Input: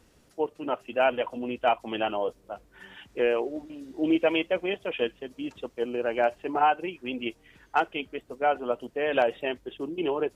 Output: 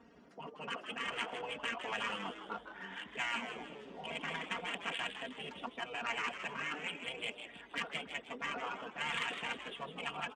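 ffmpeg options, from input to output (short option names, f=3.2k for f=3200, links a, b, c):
-filter_complex "[0:a]bandreject=f=500:w=12,afftfilt=real='re*lt(hypot(re,im),0.0501)':imag='im*lt(hypot(re,im),0.0501)':win_size=1024:overlap=0.75,highpass=170,afftfilt=real='re*gte(hypot(re,im),0.000447)':imag='im*gte(hypot(re,im),0.000447)':win_size=1024:overlap=0.75,equalizer=f=320:w=0.32:g=-7,aecho=1:1:4.3:0.74,adynamicsmooth=sensitivity=3:basefreq=1.4k,crystalizer=i=2:c=0,asplit=6[a][b][c][d][e][f];[b]adelay=157,afreqshift=120,volume=-9dB[g];[c]adelay=314,afreqshift=240,volume=-16.1dB[h];[d]adelay=471,afreqshift=360,volume=-23.3dB[i];[e]adelay=628,afreqshift=480,volume=-30.4dB[j];[f]adelay=785,afreqshift=600,volume=-37.5dB[k];[a][g][h][i][j][k]amix=inputs=6:normalize=0,volume=8dB"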